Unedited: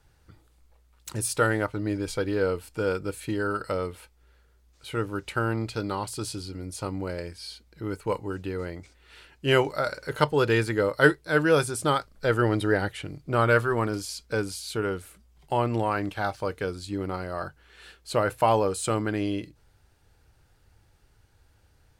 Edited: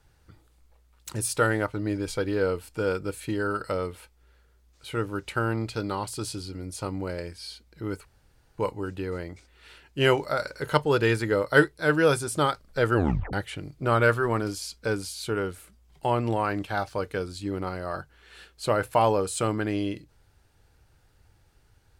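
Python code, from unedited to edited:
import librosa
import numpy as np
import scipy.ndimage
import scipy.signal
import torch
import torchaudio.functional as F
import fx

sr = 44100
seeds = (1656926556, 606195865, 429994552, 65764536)

y = fx.edit(x, sr, fx.insert_room_tone(at_s=8.05, length_s=0.53),
    fx.tape_stop(start_s=12.42, length_s=0.38), tone=tone)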